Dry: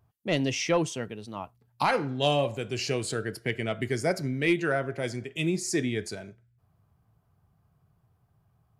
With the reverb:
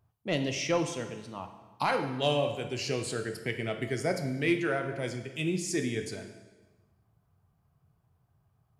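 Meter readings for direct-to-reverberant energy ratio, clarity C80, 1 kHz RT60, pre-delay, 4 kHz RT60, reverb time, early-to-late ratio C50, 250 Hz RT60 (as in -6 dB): 6.5 dB, 11.0 dB, 1.2 s, 13 ms, 1.1 s, 1.2 s, 9.0 dB, 1.2 s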